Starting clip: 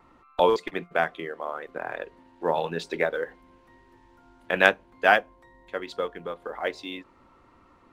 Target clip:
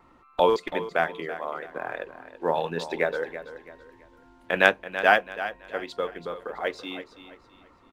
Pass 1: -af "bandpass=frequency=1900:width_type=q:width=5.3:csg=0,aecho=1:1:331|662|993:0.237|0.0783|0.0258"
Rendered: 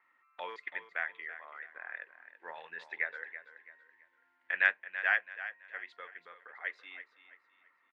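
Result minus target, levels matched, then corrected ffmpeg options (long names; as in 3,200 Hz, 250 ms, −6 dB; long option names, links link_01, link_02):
2,000 Hz band +3.5 dB
-af "aecho=1:1:331|662|993:0.237|0.0783|0.0258"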